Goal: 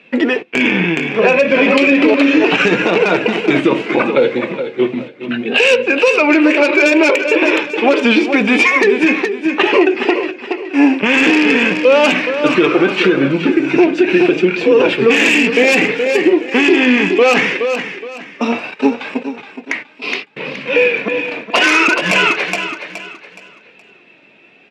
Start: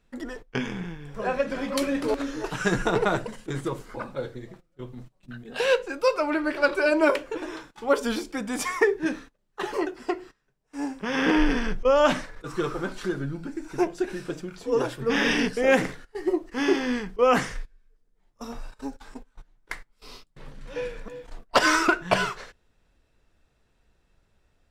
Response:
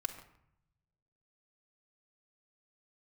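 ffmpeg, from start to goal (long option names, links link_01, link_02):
-filter_complex "[0:a]aeval=exprs='0.251*(abs(mod(val(0)/0.251+3,4)-2)-1)':channel_layout=same,asplit=2[link_01][link_02];[link_02]acrusher=bits=4:mode=log:mix=0:aa=0.000001,volume=-11.5dB[link_03];[link_01][link_03]amix=inputs=2:normalize=0,lowpass=frequency=2500:width_type=q:width=6.4,asoftclip=type=tanh:threshold=-9.5dB,acompressor=threshold=-25dB:ratio=6,highpass=frequency=200:width=0.5412,highpass=frequency=200:width=1.3066,equalizer=frequency=1400:width=0.81:gain=-8.5,asplit=2[link_04][link_05];[link_05]aecho=0:1:420|840|1260|1680:0.299|0.0985|0.0325|0.0107[link_06];[link_04][link_06]amix=inputs=2:normalize=0,flanger=delay=1.7:depth=1.7:regen=63:speed=0.68:shape=triangular,alimiter=level_in=27.5dB:limit=-1dB:release=50:level=0:latency=1,volume=-1dB"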